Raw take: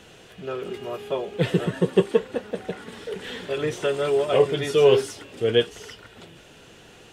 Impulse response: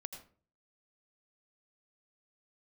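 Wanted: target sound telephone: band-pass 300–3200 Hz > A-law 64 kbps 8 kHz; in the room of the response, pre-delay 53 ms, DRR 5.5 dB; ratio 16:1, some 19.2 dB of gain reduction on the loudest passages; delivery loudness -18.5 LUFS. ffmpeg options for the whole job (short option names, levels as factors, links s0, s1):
-filter_complex "[0:a]acompressor=threshold=0.0282:ratio=16,asplit=2[s0][s1];[1:a]atrim=start_sample=2205,adelay=53[s2];[s1][s2]afir=irnorm=-1:irlink=0,volume=0.75[s3];[s0][s3]amix=inputs=2:normalize=0,highpass=300,lowpass=3200,volume=8.41" -ar 8000 -c:a pcm_alaw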